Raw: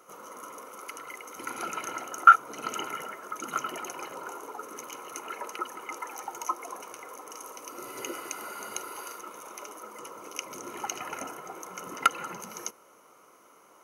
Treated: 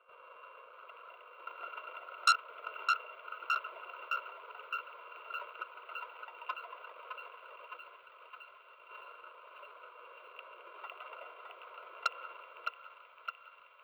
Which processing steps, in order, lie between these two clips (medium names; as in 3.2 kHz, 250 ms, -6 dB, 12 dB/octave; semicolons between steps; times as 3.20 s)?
sorted samples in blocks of 16 samples; 6.81–8.91 s: compressor with a negative ratio -45 dBFS, ratio -0.5; high-pass 630 Hz 24 dB/octave; peaking EQ 8.5 kHz -12 dB 2.9 oct; static phaser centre 1.2 kHz, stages 8; crackle 25 per s -54 dBFS; distance through air 480 m; thinning echo 613 ms, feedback 81%, high-pass 970 Hz, level -4.5 dB; transformer saturation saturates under 3.6 kHz; trim +1 dB